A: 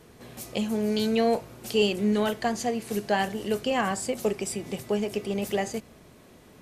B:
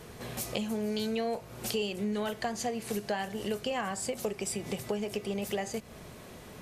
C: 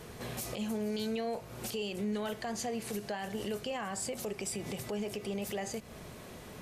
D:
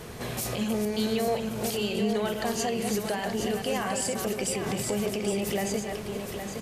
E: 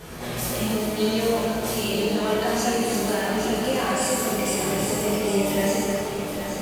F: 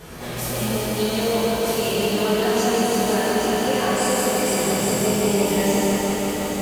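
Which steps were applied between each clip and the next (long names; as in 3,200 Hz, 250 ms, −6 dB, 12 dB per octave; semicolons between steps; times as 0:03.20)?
parametric band 290 Hz −5.5 dB 0.64 octaves; downward compressor 4 to 1, threshold −38 dBFS, peak gain reduction 15.5 dB; level +6 dB
brickwall limiter −27.5 dBFS, peak gain reduction 10.5 dB
delay that plays each chunk backwards 213 ms, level −5 dB; single-tap delay 815 ms −7.5 dB; level +6.5 dB
reverb with rising layers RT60 1.3 s, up +7 semitones, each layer −8 dB, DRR −6.5 dB; level −2 dB
feedback echo at a low word length 174 ms, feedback 80%, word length 8 bits, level −4 dB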